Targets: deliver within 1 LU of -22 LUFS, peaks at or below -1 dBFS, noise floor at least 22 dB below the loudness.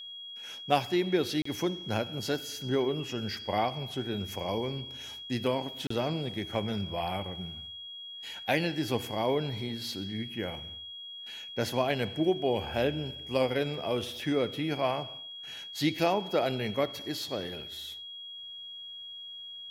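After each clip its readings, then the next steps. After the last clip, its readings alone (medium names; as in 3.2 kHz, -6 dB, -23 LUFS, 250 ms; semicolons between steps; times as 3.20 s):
dropouts 2; longest dropout 34 ms; steady tone 3.3 kHz; tone level -41 dBFS; loudness -32.5 LUFS; peak level -9.0 dBFS; loudness target -22.0 LUFS
-> interpolate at 1.42/5.87 s, 34 ms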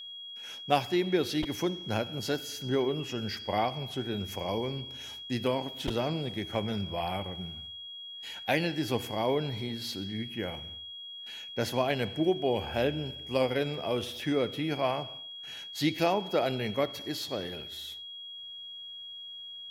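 dropouts 0; steady tone 3.3 kHz; tone level -41 dBFS
-> band-stop 3.3 kHz, Q 30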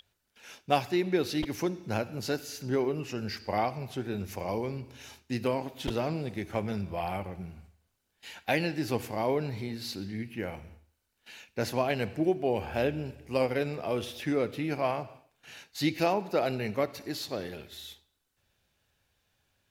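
steady tone not found; loudness -32.0 LUFS; peak level -9.0 dBFS; loudness target -22.0 LUFS
-> trim +10 dB; peak limiter -1 dBFS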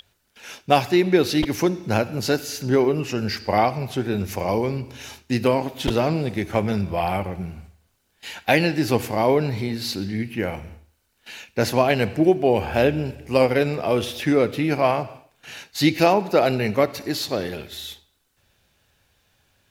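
loudness -22.0 LUFS; peak level -1.0 dBFS; noise floor -67 dBFS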